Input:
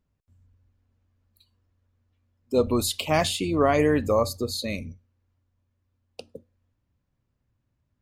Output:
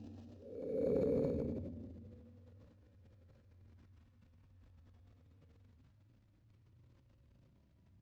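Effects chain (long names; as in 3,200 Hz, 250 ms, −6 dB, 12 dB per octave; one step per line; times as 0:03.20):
spectral magnitudes quantised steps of 15 dB
extreme stretch with random phases 13×, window 0.10 s, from 0:06.28
high-pass filter 64 Hz 12 dB per octave
low-shelf EQ 500 Hz +9 dB
on a send: single-tap delay 100 ms −22.5 dB
on the sum: transient designer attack −3 dB, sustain +10 dB
high-shelf EQ 6,400 Hz +7.5 dB
linearly interpolated sample-rate reduction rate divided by 4×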